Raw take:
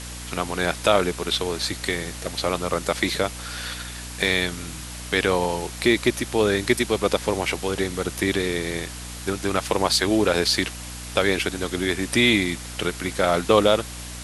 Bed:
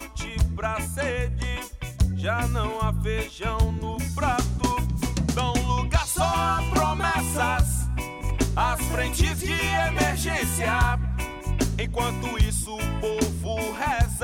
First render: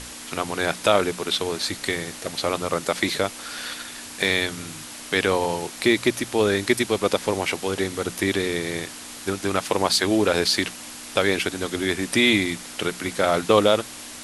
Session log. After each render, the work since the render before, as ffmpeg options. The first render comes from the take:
-af "bandreject=f=60:t=h:w=6,bandreject=f=120:t=h:w=6,bandreject=f=180:t=h:w=6"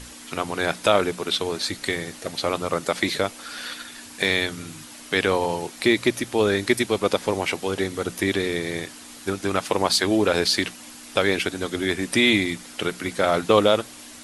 -af "afftdn=nr=6:nf=-39"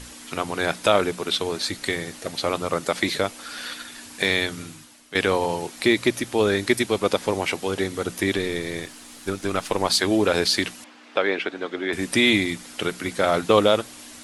-filter_complex "[0:a]asettb=1/sr,asplit=3[s0][s1][s2];[s0]atrim=end=8.374[s3];[s1]atrim=start=8.37:end=9.88,asetpts=PTS-STARTPTS,afade=t=in:d=0.004:c=qsin,afade=t=out:st=1.506:d=0.004:c=qsin,aeval=exprs='if(lt(val(0),0),0.708*val(0),val(0))':c=same[s4];[s2]atrim=start=9.876[s5];[s3][s4]acrossfade=d=0.004:c1=hsin:c2=qsin[s6];[s6][s5]acrossfade=d=0.004:c1=qsin:c2=hsin,asettb=1/sr,asplit=3[s7][s8][s9];[s7]atrim=end=10.844[s10];[s8]atrim=start=10.84:end=11.93,asetpts=PTS-STARTPTS,afade=t=in:d=0.004:c=qsin,afade=t=out:st=1.086:d=0.004:c=qsin,highpass=310,lowpass=2700[s11];[s9]atrim=start=11.926[s12];[s10][s11]acrossfade=d=0.004:c1=hsin:c2=qsin[s13];[s13][s12]acrossfade=d=0.004:c1=qsin:c2=hsin,asplit=2[s14][s15];[s14]atrim=end=5.15,asetpts=PTS-STARTPTS,afade=t=out:st=4.62:d=0.53:c=qua:silence=0.237137[s16];[s15]atrim=start=5.15,asetpts=PTS-STARTPTS,afade=t=in:d=0.004:c=hsin:silence=0.237137[s17];[s16][s17]concat=n=2:v=0:a=1"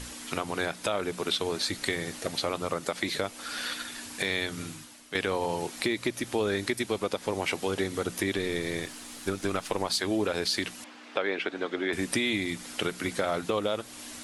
-af "alimiter=limit=0.282:level=0:latency=1:release=354,acompressor=threshold=0.0398:ratio=2"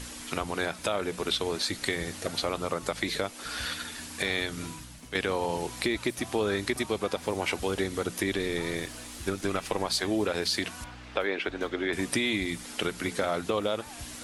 -filter_complex "[1:a]volume=0.0668[s0];[0:a][s0]amix=inputs=2:normalize=0"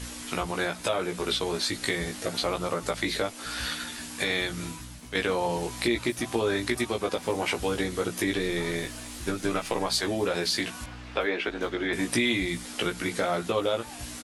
-filter_complex "[0:a]asplit=2[s0][s1];[s1]adelay=17,volume=0.708[s2];[s0][s2]amix=inputs=2:normalize=0"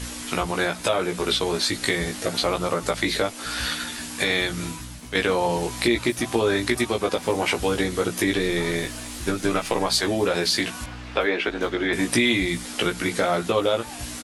-af "volume=1.78"

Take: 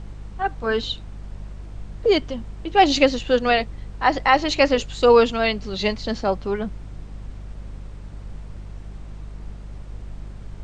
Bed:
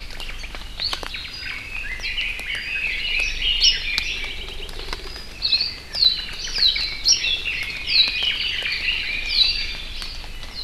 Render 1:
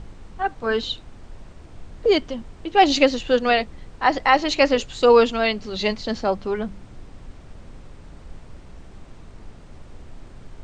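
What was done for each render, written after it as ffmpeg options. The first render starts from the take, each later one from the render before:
-af "bandreject=f=50:t=h:w=4,bandreject=f=100:t=h:w=4,bandreject=f=150:t=h:w=4,bandreject=f=200:t=h:w=4"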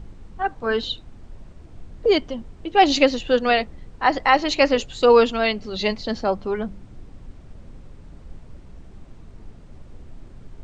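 -af "afftdn=nr=6:nf=-44"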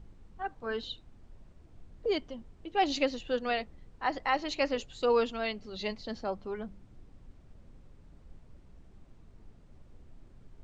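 -af "volume=0.237"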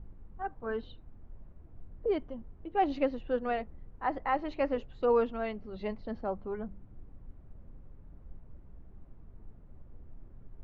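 -af "lowpass=1500,lowshelf=f=110:g=5"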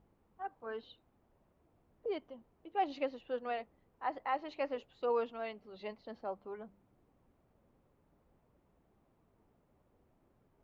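-af "highpass=f=910:p=1,equalizer=f=1600:t=o:w=1:g=-5.5"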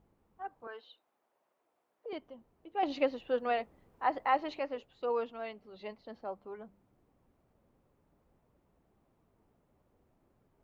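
-filter_complex "[0:a]asettb=1/sr,asplit=3[s0][s1][s2];[s0]atrim=end=0.674[s3];[s1]atrim=start=0.67:end=2.13,asetpts=PTS-STARTPTS,afade=t=in:d=0.004:c=qsin,afade=t=out:st=1.456:d=0.004:c=qsin,highpass=580[s4];[s2]atrim=start=2.126[s5];[s3][s4]acrossfade=d=0.004:c1=hsin:c2=qsin[s6];[s6][s5]acrossfade=d=0.004:c1=qsin:c2=hsin,asplit=3[s7][s8][s9];[s7]atrim=end=2.832[s10];[s8]atrim=start=2.828:end=4.592,asetpts=PTS-STARTPTS,volume=2.11[s11];[s9]atrim=start=4.588[s12];[s10][s11]acrossfade=d=0.004:c1=hsin:c2=hsin[s13];[s13][s12]acrossfade=d=0.004:c1=hsin:c2=hsin"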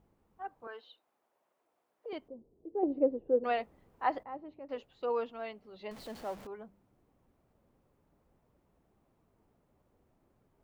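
-filter_complex "[0:a]asettb=1/sr,asplit=3[s0][s1][s2];[s0]atrim=end=2.284[s3];[s1]atrim=start=2.28:end=3.44,asetpts=PTS-STARTPTS,afade=t=in:d=0.004:c=qsin,afade=t=out:st=1.156:d=0.004:c=qsin,lowpass=f=420:t=q:w=2.6[s4];[s2]atrim=start=3.436[s5];[s3][s4]acrossfade=d=0.004:c1=hsin:c2=qsin[s6];[s6][s5]acrossfade=d=0.004:c1=qsin:c2=hsin,asettb=1/sr,asplit=3[s7][s8][s9];[s7]atrim=end=4.234[s10];[s8]atrim=start=4.23:end=4.69,asetpts=PTS-STARTPTS,afade=t=in:d=0.004:c=qsin,afade=t=out:st=0.456:d=0.004:c=qsin,bandpass=f=120:t=q:w=0.86[s11];[s9]atrim=start=4.686[s12];[s10][s11]acrossfade=d=0.004:c1=hsin:c2=qsin[s13];[s13][s12]acrossfade=d=0.004:c1=qsin:c2=hsin,asettb=1/sr,asplit=3[s14][s15][s16];[s14]atrim=end=5.914[s17];[s15]atrim=start=5.91:end=6.47,asetpts=PTS-STARTPTS,afade=t=in:d=0.004:c=qsin,afade=t=out:st=0.556:d=0.004:c=qsin,aeval=exprs='val(0)+0.5*0.00531*sgn(val(0))':c=same[s18];[s16]atrim=start=6.466[s19];[s17][s18]acrossfade=d=0.004:c1=hsin:c2=qsin[s20];[s20][s19]acrossfade=d=0.004:c1=qsin:c2=hsin"

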